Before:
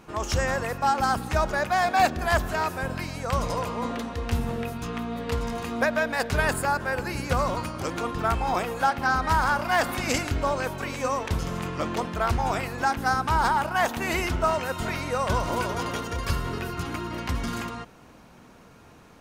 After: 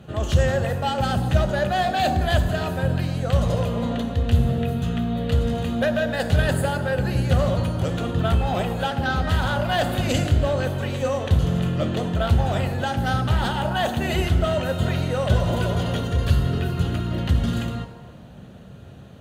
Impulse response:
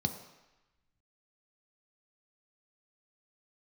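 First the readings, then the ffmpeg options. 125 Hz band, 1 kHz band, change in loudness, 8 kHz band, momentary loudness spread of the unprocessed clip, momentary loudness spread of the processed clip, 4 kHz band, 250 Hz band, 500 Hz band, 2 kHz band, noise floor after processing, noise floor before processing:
+11.0 dB, −2.5 dB, +4.0 dB, −2.5 dB, 9 LU, 4 LU, +4.5 dB, +6.5 dB, +4.0 dB, −1.5 dB, −42 dBFS, −51 dBFS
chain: -filter_complex "[0:a]equalizer=frequency=3300:width=1.5:gain=-2,acrossover=split=2300[link_01][link_02];[link_01]asoftclip=type=tanh:threshold=-21dB[link_03];[link_03][link_02]amix=inputs=2:normalize=0[link_04];[1:a]atrim=start_sample=2205,asetrate=32634,aresample=44100[link_05];[link_04][link_05]afir=irnorm=-1:irlink=0,volume=-4dB"

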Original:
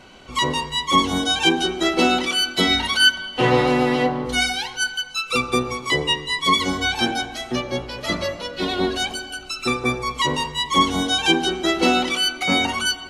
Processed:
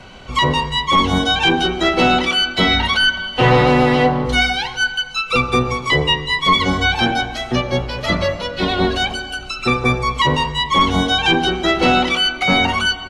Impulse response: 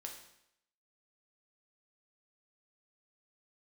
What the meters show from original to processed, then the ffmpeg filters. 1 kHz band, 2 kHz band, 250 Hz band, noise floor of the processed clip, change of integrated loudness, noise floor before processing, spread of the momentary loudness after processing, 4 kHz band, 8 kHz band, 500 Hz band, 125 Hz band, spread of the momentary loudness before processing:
+5.5 dB, +5.0 dB, +3.5 dB, −31 dBFS, +4.0 dB, −37 dBFS, 7 LU, +2.5 dB, −4.0 dB, +4.5 dB, +9.5 dB, 8 LU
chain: -filter_complex "[0:a]apsyclip=12.5dB,highshelf=frequency=9000:gain=-11.5,acrossover=split=300|1600|4300[link_01][link_02][link_03][link_04];[link_01]aecho=1:1:1.4:0.95[link_05];[link_04]acompressor=threshold=-30dB:ratio=6[link_06];[link_05][link_02][link_03][link_06]amix=inputs=4:normalize=0,volume=-6dB"

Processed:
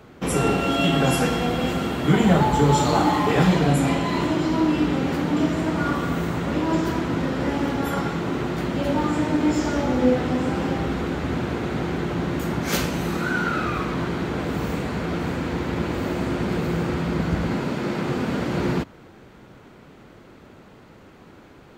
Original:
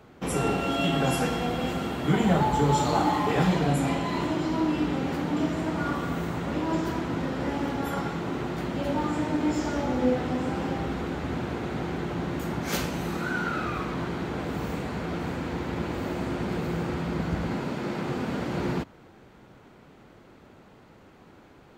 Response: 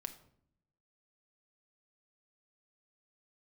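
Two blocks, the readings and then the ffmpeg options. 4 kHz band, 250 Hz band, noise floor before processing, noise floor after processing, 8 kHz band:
+5.5 dB, +5.5 dB, −53 dBFS, −48 dBFS, +5.5 dB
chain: -af "equalizer=frequency=800:width=2.5:gain=-2.5,volume=5.5dB"

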